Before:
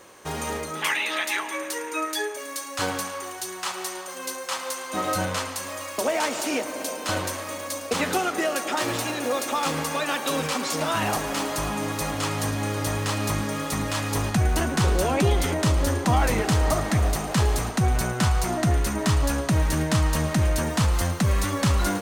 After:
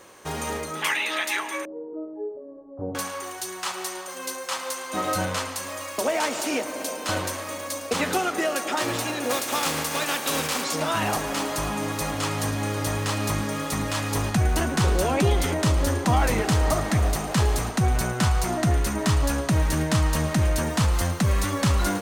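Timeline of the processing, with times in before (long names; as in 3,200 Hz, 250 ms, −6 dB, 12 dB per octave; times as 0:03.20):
0:01.65–0:02.95: inverse Chebyshev low-pass filter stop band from 2,500 Hz, stop band 70 dB
0:09.29–0:10.63: compressing power law on the bin magnitudes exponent 0.64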